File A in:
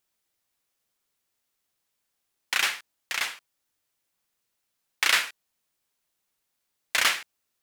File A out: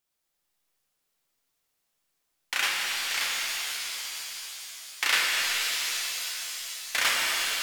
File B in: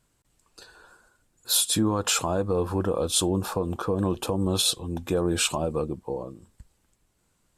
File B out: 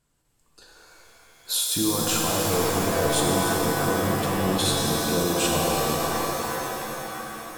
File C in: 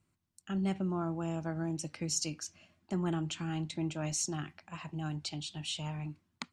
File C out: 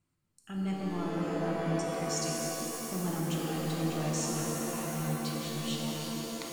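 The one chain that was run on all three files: pitch-shifted reverb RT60 4 s, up +7 st, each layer -2 dB, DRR -2.5 dB; trim -4 dB

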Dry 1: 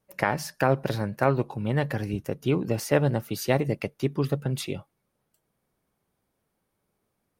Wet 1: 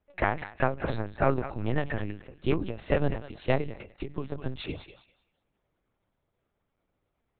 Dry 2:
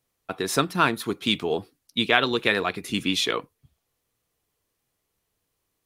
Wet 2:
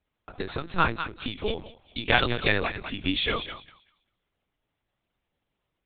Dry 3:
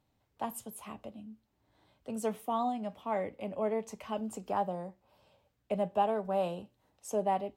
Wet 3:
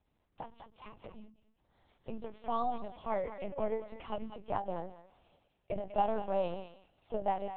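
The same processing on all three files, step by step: thinning echo 196 ms, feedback 23%, high-pass 1.1 kHz, level -8 dB; LPC vocoder at 8 kHz pitch kept; endings held to a fixed fall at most 140 dB/s; trim -1 dB

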